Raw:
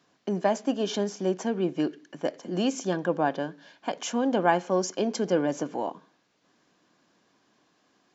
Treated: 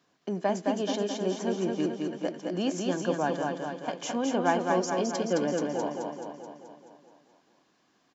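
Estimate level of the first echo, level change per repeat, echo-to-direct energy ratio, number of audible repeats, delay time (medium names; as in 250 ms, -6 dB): -3.5 dB, -4.5 dB, -1.5 dB, 7, 215 ms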